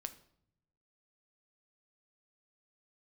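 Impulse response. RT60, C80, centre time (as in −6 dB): 0.70 s, 18.0 dB, 6 ms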